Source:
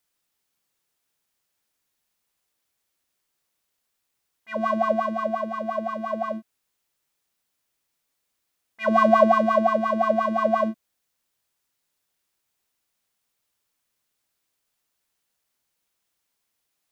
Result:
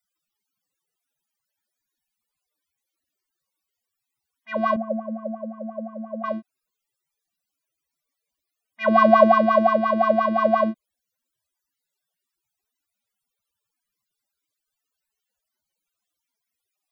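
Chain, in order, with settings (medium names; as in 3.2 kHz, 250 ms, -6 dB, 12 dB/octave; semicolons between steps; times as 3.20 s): 4.76–6.24 s: two resonant band-passes 350 Hz, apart 1.2 oct; loudest bins only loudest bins 64; trim +2.5 dB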